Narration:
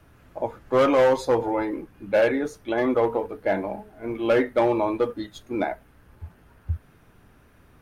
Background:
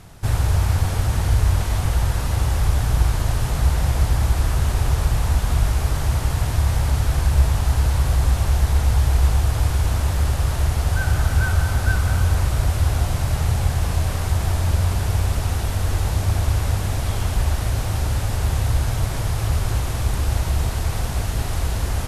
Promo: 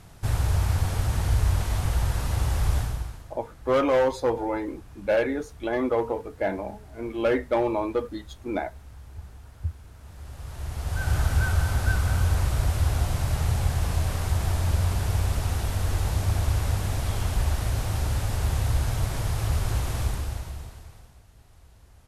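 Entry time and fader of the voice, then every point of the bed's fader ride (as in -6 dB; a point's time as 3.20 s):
2.95 s, -3.0 dB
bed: 2.78 s -5 dB
3.35 s -28 dB
9.93 s -28 dB
11.14 s -4.5 dB
20.03 s -4.5 dB
21.23 s -31 dB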